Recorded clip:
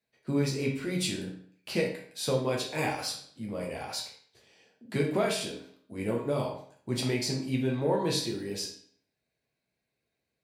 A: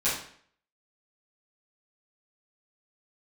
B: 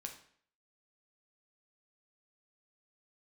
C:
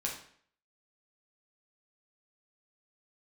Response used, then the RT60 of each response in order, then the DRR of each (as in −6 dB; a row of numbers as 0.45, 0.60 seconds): C; 0.55, 0.55, 0.55 seconds; −12.0, 3.0, −2.0 decibels